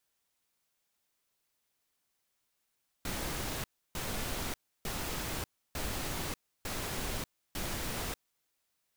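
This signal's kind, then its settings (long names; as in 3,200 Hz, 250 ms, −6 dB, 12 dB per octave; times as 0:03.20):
noise bursts pink, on 0.59 s, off 0.31 s, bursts 6, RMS −36.5 dBFS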